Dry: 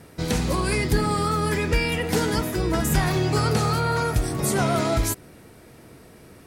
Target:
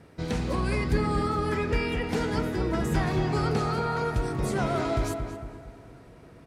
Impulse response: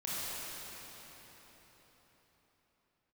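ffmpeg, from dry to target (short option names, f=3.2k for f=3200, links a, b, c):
-filter_complex "[0:a]aemphasis=mode=reproduction:type=50fm,asplit=2[a][b];[b]adelay=227,lowpass=f=2.2k:p=1,volume=-6dB,asplit=2[c][d];[d]adelay=227,lowpass=f=2.2k:p=1,volume=0.46,asplit=2[e][f];[f]adelay=227,lowpass=f=2.2k:p=1,volume=0.46,asplit=2[g][h];[h]adelay=227,lowpass=f=2.2k:p=1,volume=0.46,asplit=2[i][j];[j]adelay=227,lowpass=f=2.2k:p=1,volume=0.46,asplit=2[k][l];[l]adelay=227,lowpass=f=2.2k:p=1,volume=0.46[m];[a][c][e][g][i][k][m]amix=inputs=7:normalize=0,asplit=2[n][o];[1:a]atrim=start_sample=2205,asetrate=31752,aresample=44100[p];[o][p]afir=irnorm=-1:irlink=0,volume=-27.5dB[q];[n][q]amix=inputs=2:normalize=0,volume=-5.5dB"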